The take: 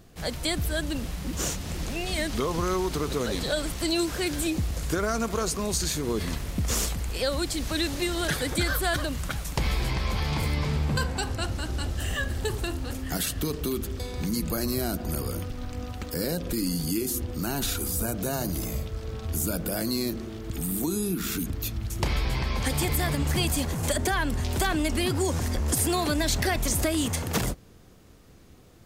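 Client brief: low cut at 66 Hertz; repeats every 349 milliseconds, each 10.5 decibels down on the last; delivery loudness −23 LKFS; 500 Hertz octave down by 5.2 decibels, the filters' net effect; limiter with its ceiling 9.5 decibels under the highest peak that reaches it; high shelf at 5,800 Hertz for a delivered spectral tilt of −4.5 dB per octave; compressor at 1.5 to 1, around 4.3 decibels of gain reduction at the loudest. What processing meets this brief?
high-pass filter 66 Hz
parametric band 500 Hz −7.5 dB
high-shelf EQ 5,800 Hz −7 dB
downward compressor 1.5 to 1, threshold −36 dBFS
brickwall limiter −28 dBFS
repeating echo 349 ms, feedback 30%, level −10.5 dB
level +14 dB

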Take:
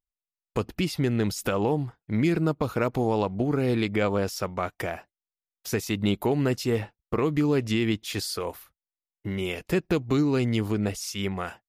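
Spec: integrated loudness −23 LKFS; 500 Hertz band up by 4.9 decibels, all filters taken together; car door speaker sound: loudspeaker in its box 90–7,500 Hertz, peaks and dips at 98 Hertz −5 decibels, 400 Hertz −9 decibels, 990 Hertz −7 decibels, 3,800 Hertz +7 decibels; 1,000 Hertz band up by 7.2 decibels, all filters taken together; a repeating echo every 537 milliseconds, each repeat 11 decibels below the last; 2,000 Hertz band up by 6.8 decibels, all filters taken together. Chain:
loudspeaker in its box 90–7,500 Hz, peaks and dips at 98 Hz −5 dB, 400 Hz −9 dB, 990 Hz −7 dB, 3,800 Hz +7 dB
parametric band 500 Hz +8.5 dB
parametric band 1,000 Hz +9 dB
parametric band 2,000 Hz +5.5 dB
repeating echo 537 ms, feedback 28%, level −11 dB
level +0.5 dB

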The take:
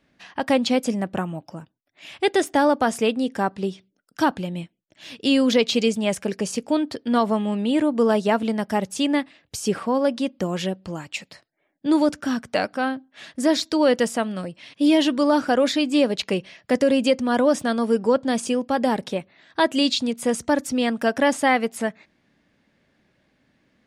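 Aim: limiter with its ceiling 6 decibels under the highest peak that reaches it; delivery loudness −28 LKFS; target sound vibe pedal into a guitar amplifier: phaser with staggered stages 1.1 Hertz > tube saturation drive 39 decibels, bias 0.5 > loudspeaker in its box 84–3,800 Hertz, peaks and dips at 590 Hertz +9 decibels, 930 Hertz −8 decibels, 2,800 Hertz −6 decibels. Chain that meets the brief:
brickwall limiter −14 dBFS
phaser with staggered stages 1.1 Hz
tube saturation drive 39 dB, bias 0.5
loudspeaker in its box 84–3,800 Hz, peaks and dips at 590 Hz +9 dB, 930 Hz −8 dB, 2,800 Hz −6 dB
level +13.5 dB

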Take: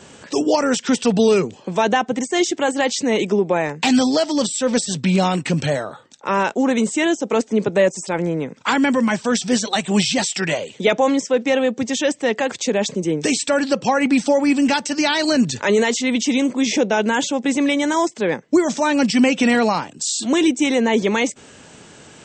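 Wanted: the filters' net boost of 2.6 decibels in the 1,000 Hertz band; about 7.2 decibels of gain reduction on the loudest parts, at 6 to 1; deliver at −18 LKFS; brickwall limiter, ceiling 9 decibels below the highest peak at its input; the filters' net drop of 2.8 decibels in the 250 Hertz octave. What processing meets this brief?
parametric band 250 Hz −3.5 dB
parametric band 1,000 Hz +3.5 dB
downward compressor 6 to 1, threshold −19 dBFS
level +6.5 dB
brickwall limiter −8 dBFS

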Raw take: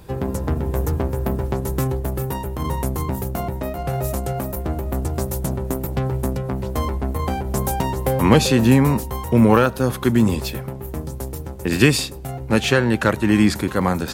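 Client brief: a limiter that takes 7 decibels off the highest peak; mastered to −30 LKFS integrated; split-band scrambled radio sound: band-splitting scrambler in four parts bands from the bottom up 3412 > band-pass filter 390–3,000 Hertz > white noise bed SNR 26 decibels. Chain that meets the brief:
brickwall limiter −8 dBFS
band-splitting scrambler in four parts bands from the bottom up 3412
band-pass filter 390–3,000 Hz
white noise bed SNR 26 dB
level −8 dB

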